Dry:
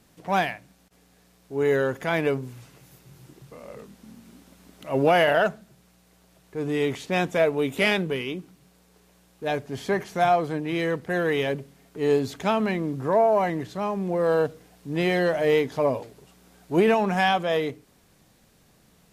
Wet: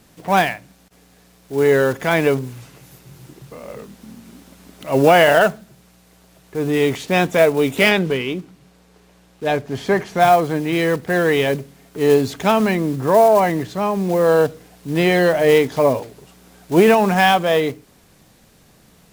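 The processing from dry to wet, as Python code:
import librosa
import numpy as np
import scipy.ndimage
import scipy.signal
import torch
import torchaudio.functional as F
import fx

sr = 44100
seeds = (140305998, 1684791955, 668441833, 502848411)

y = fx.block_float(x, sr, bits=5)
y = fx.high_shelf(y, sr, hz=7500.0, db=-9.5, at=(7.89, 10.2))
y = y * librosa.db_to_amplitude(7.5)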